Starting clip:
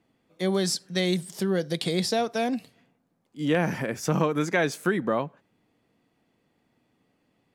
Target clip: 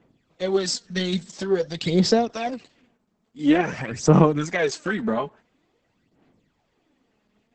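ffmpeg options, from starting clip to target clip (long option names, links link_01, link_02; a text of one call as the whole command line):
ffmpeg -i in.wav -af "aphaser=in_gain=1:out_gain=1:delay=4.8:decay=0.69:speed=0.48:type=sinusoidal" -ar 48000 -c:a libopus -b:a 10k out.opus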